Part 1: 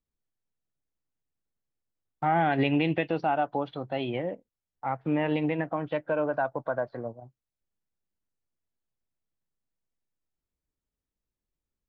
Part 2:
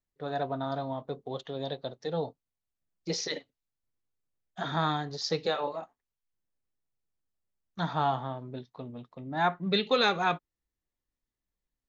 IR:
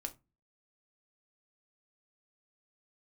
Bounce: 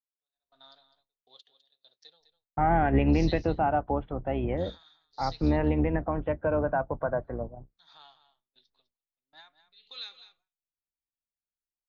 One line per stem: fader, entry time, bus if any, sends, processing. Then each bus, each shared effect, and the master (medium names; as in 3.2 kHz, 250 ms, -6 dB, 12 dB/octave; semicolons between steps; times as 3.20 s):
+1.0 dB, 0.35 s, muted 1.22–2.20 s, no send, no echo send, octave divider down 2 oct, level 0 dB; Bessel low-pass 1.6 kHz, order 8
-1.5 dB, 0.00 s, no send, echo send -13 dB, peak limiter -21.5 dBFS, peak gain reduction 8 dB; band-pass filter 4.3 kHz, Q 2.3; logarithmic tremolo 1.5 Hz, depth 24 dB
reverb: none
echo: delay 204 ms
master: gate with hold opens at -59 dBFS